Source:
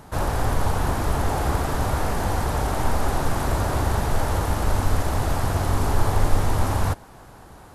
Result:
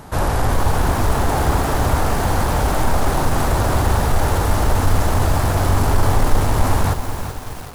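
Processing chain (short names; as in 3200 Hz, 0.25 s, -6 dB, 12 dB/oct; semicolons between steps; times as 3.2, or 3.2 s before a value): in parallel at +1 dB: soft clip -19.5 dBFS, distortion -11 dB; on the sum: lo-fi delay 0.381 s, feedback 55%, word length 5-bit, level -8 dB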